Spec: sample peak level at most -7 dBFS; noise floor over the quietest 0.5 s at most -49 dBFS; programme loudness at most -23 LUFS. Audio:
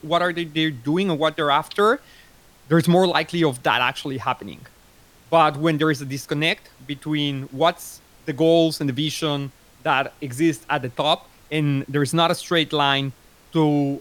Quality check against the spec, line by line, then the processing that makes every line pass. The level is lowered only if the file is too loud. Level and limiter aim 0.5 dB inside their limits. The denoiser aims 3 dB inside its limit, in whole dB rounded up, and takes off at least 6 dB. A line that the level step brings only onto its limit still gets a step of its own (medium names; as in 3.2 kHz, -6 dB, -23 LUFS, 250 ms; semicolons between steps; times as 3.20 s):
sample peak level -4.0 dBFS: fail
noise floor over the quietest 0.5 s -52 dBFS: pass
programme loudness -21.5 LUFS: fail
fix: trim -2 dB; peak limiter -7.5 dBFS